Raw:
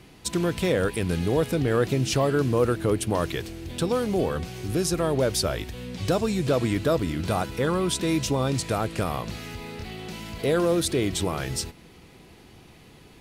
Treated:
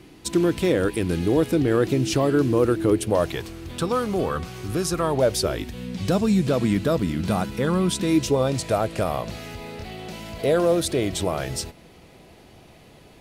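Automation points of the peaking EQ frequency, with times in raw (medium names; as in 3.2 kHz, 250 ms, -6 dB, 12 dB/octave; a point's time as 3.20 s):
peaking EQ +9 dB 0.5 oct
2.90 s 320 Hz
3.52 s 1.2 kHz
5.01 s 1.2 kHz
5.74 s 200 Hz
8.00 s 200 Hz
8.48 s 620 Hz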